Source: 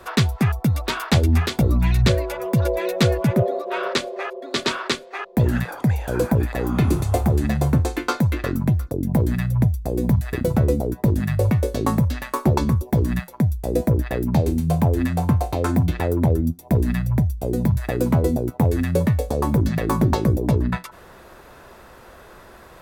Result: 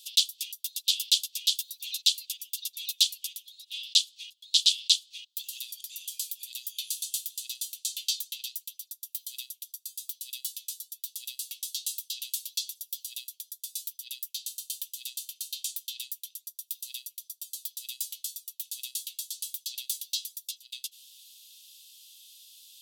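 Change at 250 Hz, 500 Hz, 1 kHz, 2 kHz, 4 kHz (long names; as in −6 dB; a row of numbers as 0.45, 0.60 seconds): below −40 dB, below −40 dB, below −40 dB, −18.5 dB, +5.0 dB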